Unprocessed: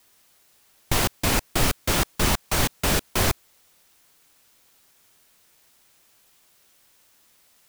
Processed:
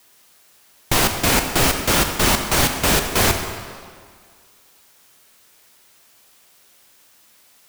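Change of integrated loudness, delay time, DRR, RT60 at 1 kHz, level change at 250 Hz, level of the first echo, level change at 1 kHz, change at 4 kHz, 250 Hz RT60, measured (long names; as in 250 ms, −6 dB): +6.0 dB, no echo audible, 5.0 dB, 2.0 s, +5.0 dB, no echo audible, +6.5 dB, +6.5 dB, 1.9 s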